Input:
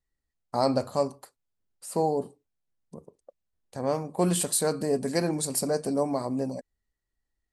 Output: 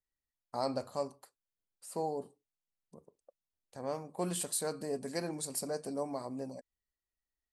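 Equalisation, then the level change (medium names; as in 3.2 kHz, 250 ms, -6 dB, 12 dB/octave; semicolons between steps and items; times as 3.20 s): bass shelf 330 Hz -5 dB; -8.5 dB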